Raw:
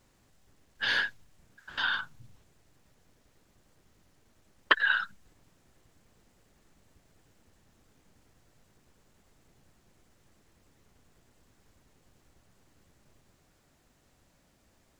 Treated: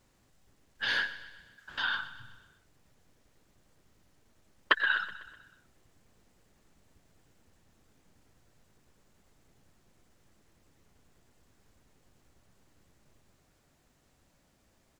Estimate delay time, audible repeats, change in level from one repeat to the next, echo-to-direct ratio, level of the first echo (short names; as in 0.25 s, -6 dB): 0.125 s, 4, -5.5 dB, -13.5 dB, -15.0 dB